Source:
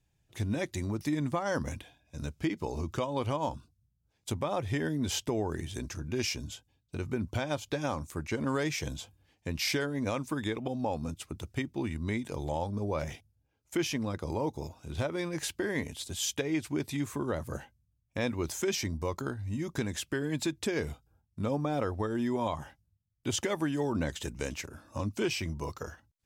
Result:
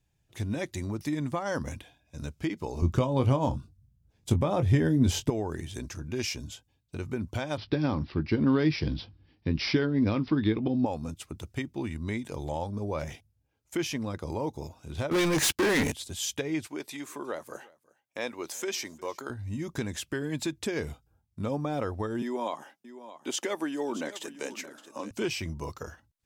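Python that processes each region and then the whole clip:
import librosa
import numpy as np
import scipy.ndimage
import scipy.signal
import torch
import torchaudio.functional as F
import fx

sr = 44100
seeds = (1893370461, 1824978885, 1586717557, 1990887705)

y = fx.chain(x, sr, fx.low_shelf(hz=370.0, db=12.0),
    fx.doubler(ms=23.0, db=-10.0), at=(2.82, 5.3))
y = fx.chain(y, sr, fx.low_shelf_res(hz=430.0, db=7.0, q=1.5),
    fx.doubler(ms=19.0, db=-14),
    fx.resample_bad(factor=4, down='none', up='filtered'), at=(7.57, 10.86))
y = fx.chain(y, sr, fx.low_shelf(hz=120.0, db=-9.0),
    fx.leveller(passes=5), at=(15.11, 15.92))
y = fx.chain(y, sr, fx.highpass(hz=390.0, slope=12),
    fx.echo_single(ms=358, db=-23.5), at=(16.67, 19.3))
y = fx.chain(y, sr, fx.highpass(hz=250.0, slope=24),
    fx.echo_single(ms=623, db=-14.0), at=(22.22, 25.11))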